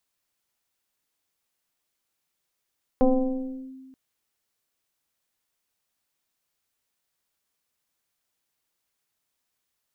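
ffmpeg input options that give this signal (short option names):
-f lavfi -i "aevalsrc='0.211*pow(10,-3*t/1.65)*sin(2*PI*263*t+1.5*clip(1-t/0.72,0,1)*sin(2*PI*0.96*263*t))':d=0.93:s=44100"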